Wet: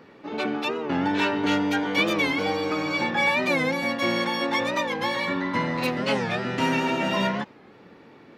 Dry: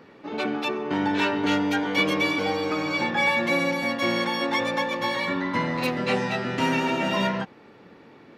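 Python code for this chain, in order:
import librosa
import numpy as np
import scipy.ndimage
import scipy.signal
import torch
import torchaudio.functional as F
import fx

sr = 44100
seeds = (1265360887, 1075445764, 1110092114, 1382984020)

y = fx.record_warp(x, sr, rpm=45.0, depth_cents=160.0)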